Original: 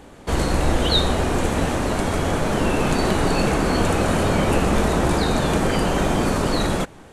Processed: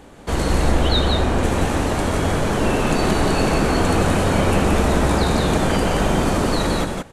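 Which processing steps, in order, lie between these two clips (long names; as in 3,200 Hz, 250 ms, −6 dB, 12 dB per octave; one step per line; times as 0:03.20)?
0:00.71–0:01.43: high-shelf EQ 4,800 Hz −7 dB
on a send: single-tap delay 174 ms −4 dB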